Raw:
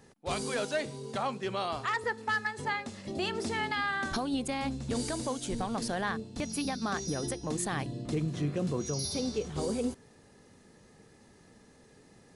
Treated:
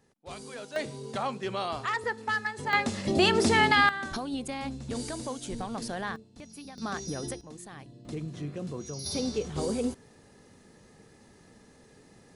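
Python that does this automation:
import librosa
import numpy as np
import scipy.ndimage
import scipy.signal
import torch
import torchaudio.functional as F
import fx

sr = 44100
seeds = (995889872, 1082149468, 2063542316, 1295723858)

y = fx.gain(x, sr, db=fx.steps((0.0, -9.0), (0.76, 1.0), (2.73, 10.5), (3.89, -2.0), (6.16, -12.0), (6.78, -1.5), (7.41, -12.5), (8.05, -5.0), (9.06, 2.0)))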